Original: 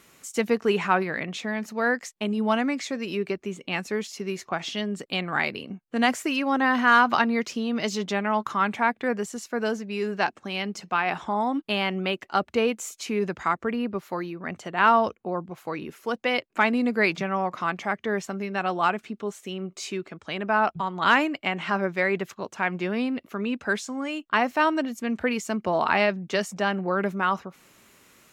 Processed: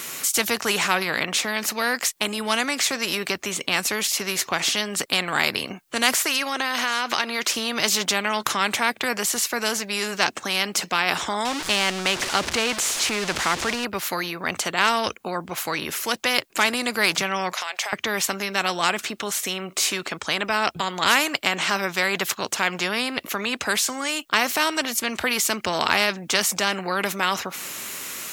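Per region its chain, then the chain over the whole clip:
6.15–7.54 HPF 520 Hz 6 dB/oct + high shelf 11000 Hz -6.5 dB + compressor 3:1, threshold -25 dBFS
11.45–13.85 zero-crossing step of -34 dBFS + air absorption 81 m
17.53–17.93 HPF 700 Hz 24 dB/oct + bell 1200 Hz -9.5 dB 0.59 oct + compressor, threshold -36 dBFS
whole clip: tilt +2.5 dB/oct; spectral compressor 2:1; gain +3 dB

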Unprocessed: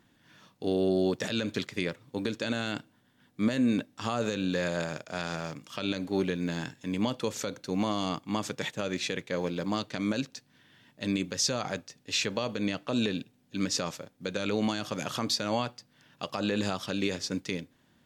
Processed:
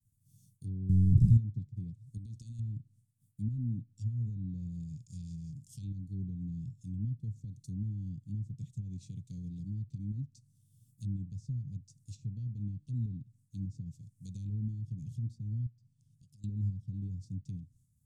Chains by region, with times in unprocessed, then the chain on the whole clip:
0.89–1.37 half-waves squared off + comb 0.8 ms, depth 63% + fast leveller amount 100%
2.17–2.59 compressor, threshold -34 dBFS + notch 7400 Hz
15.66–16.44 LPF 11000 Hz + high shelf 6400 Hz -10 dB + compressor 2.5:1, threshold -54 dBFS
whole clip: expander -58 dBFS; elliptic band-stop 120–8500 Hz, stop band 80 dB; treble ducked by the level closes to 1000 Hz, closed at -42 dBFS; gain +8 dB

